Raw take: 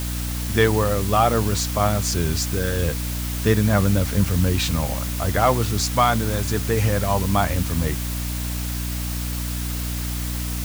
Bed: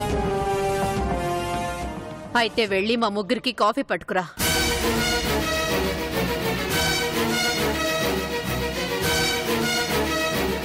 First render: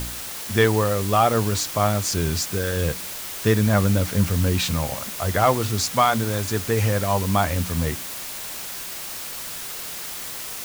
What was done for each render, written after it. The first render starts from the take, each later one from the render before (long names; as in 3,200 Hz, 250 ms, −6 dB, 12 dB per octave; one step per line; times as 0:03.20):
hum removal 60 Hz, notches 5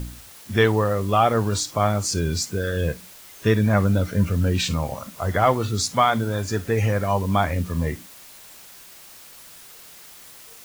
noise reduction from a noise print 12 dB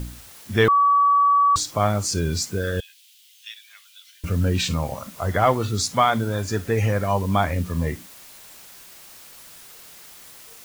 0:00.68–0:01.56: beep over 1,140 Hz −13.5 dBFS
0:02.80–0:04.24: four-pole ladder high-pass 2,700 Hz, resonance 55%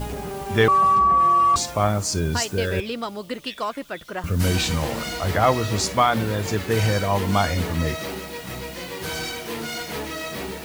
mix in bed −7.5 dB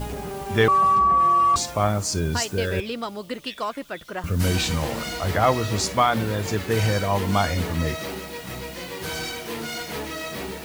level −1 dB